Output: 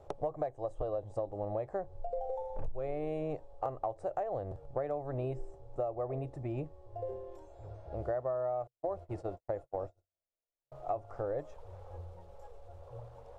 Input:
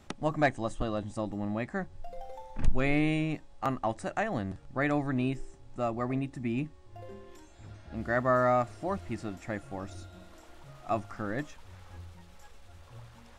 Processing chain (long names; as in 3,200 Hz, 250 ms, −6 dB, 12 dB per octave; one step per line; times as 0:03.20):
0:08.67–0:10.72: noise gate −38 dBFS, range −53 dB
drawn EQ curve 130 Hz 0 dB, 230 Hz −17 dB, 480 Hz +12 dB, 780 Hz +5 dB, 1,800 Hz −14 dB
downward compressor 16 to 1, threshold −31 dBFS, peak gain reduction 17.5 dB